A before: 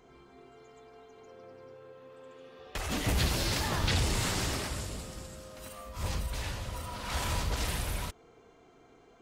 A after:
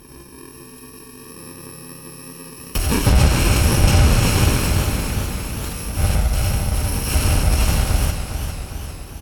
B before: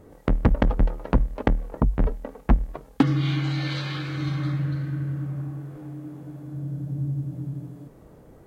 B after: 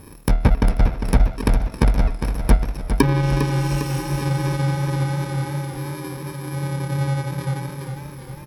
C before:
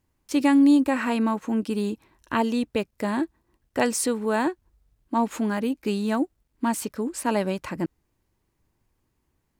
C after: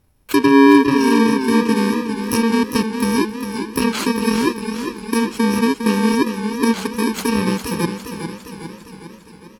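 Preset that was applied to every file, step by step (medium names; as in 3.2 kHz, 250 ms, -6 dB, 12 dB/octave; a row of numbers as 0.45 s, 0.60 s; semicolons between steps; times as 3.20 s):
bit-reversed sample order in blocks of 64 samples; low-pass that closes with the level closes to 2.9 kHz, closed at -16 dBFS; peaking EQ 7 kHz -6.5 dB 2.3 oct; in parallel at -3 dB: compression, threshold -36 dBFS; on the sum: feedback delay 488 ms, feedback 59%, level -21.5 dB; modulated delay 404 ms, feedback 58%, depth 64 cents, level -8 dB; peak normalisation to -3 dBFS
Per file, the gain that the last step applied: +14.5 dB, +4.0 dB, +9.0 dB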